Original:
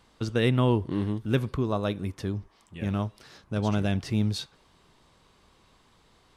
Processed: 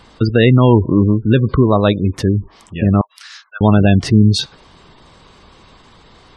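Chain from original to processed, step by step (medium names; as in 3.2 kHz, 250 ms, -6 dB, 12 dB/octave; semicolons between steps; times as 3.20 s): 0.64–2.04 s: treble shelf 3.6 kHz -> 5.6 kHz +5.5 dB; spectral gate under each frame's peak -25 dB strong; 3.01–3.61 s: inverse Chebyshev high-pass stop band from 290 Hz, stop band 70 dB; loudness maximiser +17 dB; trim -1 dB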